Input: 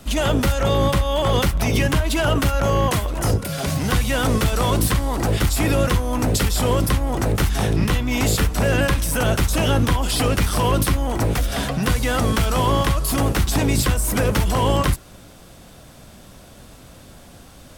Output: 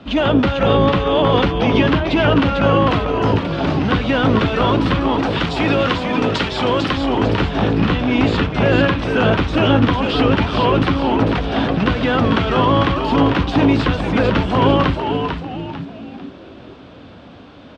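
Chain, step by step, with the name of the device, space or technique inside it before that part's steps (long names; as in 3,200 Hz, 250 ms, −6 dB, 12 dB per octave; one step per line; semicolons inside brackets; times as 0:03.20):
0:05.18–0:06.97: spectral tilt +2 dB per octave
frequency-shifting delay pedal into a guitar cabinet (echo with shifted repeats 447 ms, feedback 38%, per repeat −110 Hz, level −5 dB; loudspeaker in its box 100–3,500 Hz, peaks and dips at 140 Hz −4 dB, 280 Hz +5 dB, 2,000 Hz −4 dB)
level +4.5 dB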